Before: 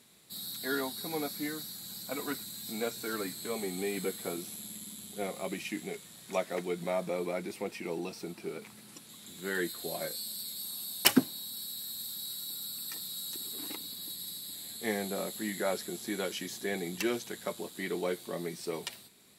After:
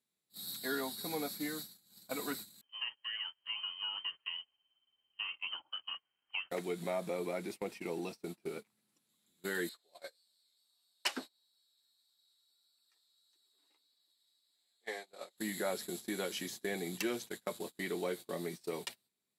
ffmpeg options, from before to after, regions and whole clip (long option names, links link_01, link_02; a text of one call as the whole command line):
ffmpeg -i in.wav -filter_complex "[0:a]asettb=1/sr,asplit=3[link_01][link_02][link_03];[link_01]atrim=end=2.614[link_04];[link_02]atrim=start=2.61:end=6.51,asetpts=PTS-STARTPTS,afade=type=in:duration=0.004:curve=qsin,afade=type=out:start_time=3.896:duration=0.004:curve=qsin,acrossover=split=400|850[link_05][link_06][link_07];[link_05]acompressor=threshold=-41dB:ratio=4[link_08];[link_06]acompressor=threshold=-38dB:ratio=4[link_09];[link_07]acompressor=threshold=-44dB:ratio=4[link_10];[link_08][link_09][link_10]amix=inputs=3:normalize=0,lowpass=frequency=2800:width_type=q:width=0.5098,lowpass=frequency=2800:width_type=q:width=0.6013,lowpass=frequency=2800:width_type=q:width=0.9,lowpass=frequency=2800:width_type=q:width=2.563,afreqshift=-3300[link_11];[link_03]atrim=start=6.506[link_12];[link_04][link_11]acrossfade=duration=0.004:curve1=hsin:curve2=qsin[link_13];[link_13][link_12]acrossfade=duration=0.004:curve1=qsin:curve2=hsin,asettb=1/sr,asplit=3[link_14][link_15][link_16];[link_14]atrim=end=9.694[link_17];[link_15]atrim=start=9.69:end=15.38,asetpts=PTS-STARTPTS,afade=type=in:duration=0.004:curve=qsin,afade=type=out:start_time=5.686:duration=0.004:curve=qsin,flanger=delay=5.2:depth=7.8:regen=-38:speed=1.6:shape=sinusoidal,highpass=530,lowpass=6600[link_18];[link_16]atrim=start=15.376[link_19];[link_17][link_18]acrossfade=duration=0.004:curve1=hsin:curve2=qsin[link_20];[link_20][link_19]acrossfade=duration=0.004:curve1=qsin:curve2=hsin,agate=range=-28dB:threshold=-40dB:ratio=16:detection=peak,lowshelf=frequency=70:gain=-7.5,acompressor=threshold=-42dB:ratio=1.5,volume=1dB" out.wav